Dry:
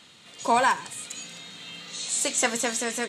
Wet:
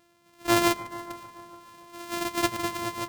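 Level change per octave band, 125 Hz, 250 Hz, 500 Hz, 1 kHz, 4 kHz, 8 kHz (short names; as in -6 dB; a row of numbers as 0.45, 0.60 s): +9.5, +5.0, -0.5, -4.0, -2.0, -10.0 dB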